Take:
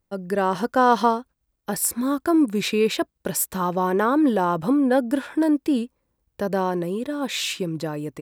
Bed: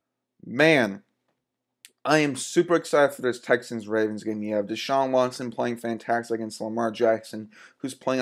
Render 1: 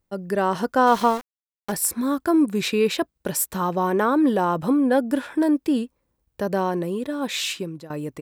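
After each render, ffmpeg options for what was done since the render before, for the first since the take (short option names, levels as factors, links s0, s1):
-filter_complex "[0:a]asettb=1/sr,asplit=3[s0][s1][s2];[s0]atrim=end=0.874[s3];[s1]atrim=start=0.87:end=1.72,asetpts=PTS-STARTPTS,afade=t=in:d=0.004:c=qsin,afade=t=out:st=0.846:d=0.004:c=qsin,aeval=exprs='val(0)*gte(abs(val(0)),0.0299)':c=same[s4];[s2]atrim=start=1.716[s5];[s3][s4]acrossfade=d=0.004:c1=hsin:c2=qsin[s6];[s6][s5]acrossfade=d=0.004:c1=qsin:c2=hsin,asplit=2[s7][s8];[s7]atrim=end=7.9,asetpts=PTS-STARTPTS,afade=t=out:st=7.49:d=0.41:silence=0.133352[s9];[s8]atrim=start=7.9,asetpts=PTS-STARTPTS,afade=t=in:d=0.004:c=hsin:silence=0.133352[s10];[s9][s10]concat=n=2:v=0:a=1"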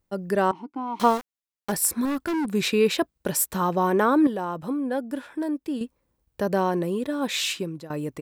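-filter_complex "[0:a]asettb=1/sr,asplit=3[s0][s1][s2];[s0]atrim=end=0.514[s3];[s1]atrim=start=0.51:end=1,asetpts=PTS-STARTPTS,afade=t=in:d=0.004:c=qsin,afade=t=out:st=0.486:d=0.004:c=qsin,asplit=3[s4][s5][s6];[s4]bandpass=f=300:t=q:w=8,volume=1[s7];[s5]bandpass=f=870:t=q:w=8,volume=0.501[s8];[s6]bandpass=f=2240:t=q:w=8,volume=0.355[s9];[s7][s8][s9]amix=inputs=3:normalize=0[s10];[s2]atrim=start=0.996[s11];[s3][s10]acrossfade=d=0.004:c1=hsin:c2=qsin[s12];[s12][s11]acrossfade=d=0.004:c1=qsin:c2=hsin,asettb=1/sr,asplit=3[s13][s14][s15];[s13]atrim=end=2.054[s16];[s14]atrim=start=2.05:end=2.54,asetpts=PTS-STARTPTS,afade=t=in:d=0.004:c=qsin,afade=t=out:st=0.486:d=0.004:c=qsin,asoftclip=type=hard:threshold=0.0668[s17];[s15]atrim=start=2.536[s18];[s16][s17]acrossfade=d=0.004:c1=hsin:c2=qsin[s19];[s19][s18]acrossfade=d=0.004:c1=qsin:c2=hsin,asplit=3[s20][s21][s22];[s20]atrim=end=4.272[s23];[s21]atrim=start=4.268:end=5.812,asetpts=PTS-STARTPTS,volume=0.398[s24];[s22]atrim=start=5.808[s25];[s23][s24]acrossfade=d=0.004:c1=hsin:c2=hsin[s26];[s26][s25]acrossfade=d=0.004:c1=hsin:c2=hsin"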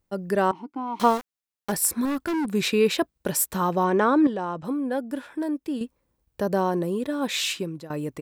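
-filter_complex "[0:a]asettb=1/sr,asplit=3[s0][s1][s2];[s0]atrim=end=3.844[s3];[s1]atrim=start=3.84:end=4.65,asetpts=PTS-STARTPTS,afade=t=in:d=0.004:c=qsin,afade=t=out:st=0.806:d=0.004:c=qsin,lowpass=f=7500:w=0.5412,lowpass=f=7500:w=1.3066[s4];[s2]atrim=start=4.646[s5];[s3][s4]acrossfade=d=0.004:c1=hsin:c2=qsin[s6];[s6][s5]acrossfade=d=0.004:c1=qsin:c2=hsin,asettb=1/sr,asplit=3[s7][s8][s9];[s7]atrim=end=6.414[s10];[s8]atrim=start=6.41:end=7,asetpts=PTS-STARTPTS,afade=t=in:d=0.004:c=qsin,afade=t=out:st=0.586:d=0.004:c=qsin,equalizer=f=2300:w=1.5:g=-5.5[s11];[s9]atrim=start=6.996[s12];[s10][s11]acrossfade=d=0.004:c1=hsin:c2=qsin[s13];[s13][s12]acrossfade=d=0.004:c1=qsin:c2=hsin"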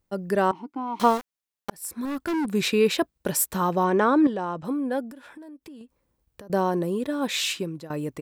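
-filter_complex "[0:a]asettb=1/sr,asplit=3[s0][s1][s2];[s0]atrim=end=5.114[s3];[s1]atrim=start=5.11:end=6.5,asetpts=PTS-STARTPTS,afade=t=in:d=0.004:c=qsin,afade=t=out:st=1.386:d=0.004:c=qsin,acompressor=threshold=0.01:ratio=16:attack=3.2:release=140:knee=1:detection=peak[s4];[s2]atrim=start=6.496[s5];[s3][s4]acrossfade=d=0.004:c1=hsin:c2=qsin[s6];[s6][s5]acrossfade=d=0.004:c1=qsin:c2=hsin,asplit=2[s7][s8];[s7]atrim=end=1.7,asetpts=PTS-STARTPTS,afade=t=out:st=1.696:d=0.004:c=hsin[s9];[s8]atrim=start=1.7,asetpts=PTS-STARTPTS,afade=t=in:d=0.62[s10];[s9][s10]concat=n=2:v=0:a=1"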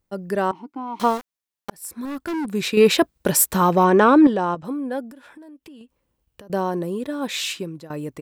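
-filter_complex "[0:a]asettb=1/sr,asplit=3[s0][s1][s2];[s0]atrim=end=2.774[s3];[s1]atrim=start=2.77:end=4.55,asetpts=PTS-STARTPTS,afade=t=in:d=0.004:c=qsin,afade=t=out:st=1.776:d=0.004:c=qsin,acontrast=84[s4];[s2]atrim=start=4.546[s5];[s3][s4]acrossfade=d=0.004:c1=hsin:c2=qsin[s6];[s6][s5]acrossfade=d=0.004:c1=qsin:c2=hsin,asettb=1/sr,asplit=3[s7][s8][s9];[s7]atrim=end=5.484[s10];[s8]atrim=start=5.48:end=6.56,asetpts=PTS-STARTPTS,afade=t=in:d=0.004:c=qsin,afade=t=out:st=1.076:d=0.004:c=qsin,equalizer=f=2900:t=o:w=0.3:g=7.5[s11];[s9]atrim=start=6.556[s12];[s10][s11]acrossfade=d=0.004:c1=hsin:c2=qsin[s13];[s13][s12]acrossfade=d=0.004:c1=qsin:c2=hsin"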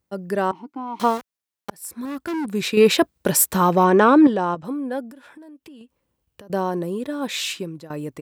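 -af "highpass=57"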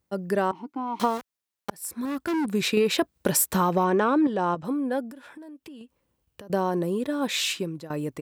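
-af "acompressor=threshold=0.112:ratio=6"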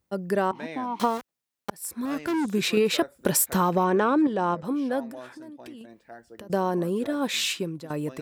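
-filter_complex "[1:a]volume=0.0944[s0];[0:a][s0]amix=inputs=2:normalize=0"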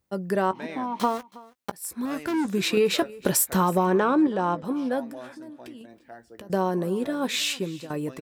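-filter_complex "[0:a]asplit=2[s0][s1];[s1]adelay=16,volume=0.211[s2];[s0][s2]amix=inputs=2:normalize=0,aecho=1:1:322:0.0841"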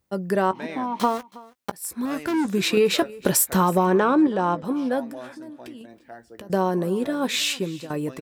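-af "volume=1.33"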